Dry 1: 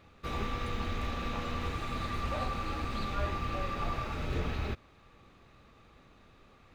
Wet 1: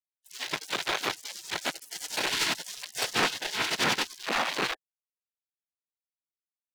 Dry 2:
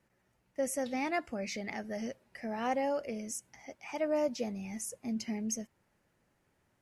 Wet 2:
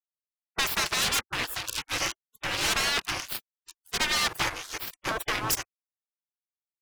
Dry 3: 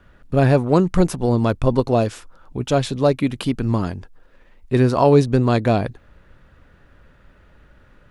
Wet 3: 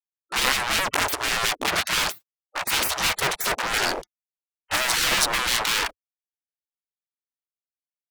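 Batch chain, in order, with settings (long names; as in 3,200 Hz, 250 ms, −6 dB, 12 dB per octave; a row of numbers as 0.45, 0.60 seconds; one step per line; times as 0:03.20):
noise reduction from a noise print of the clip's start 9 dB
fuzz pedal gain 35 dB, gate −39 dBFS
gate on every frequency bin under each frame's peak −20 dB weak
level +4 dB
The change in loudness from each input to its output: +6.5, +8.0, −4.0 LU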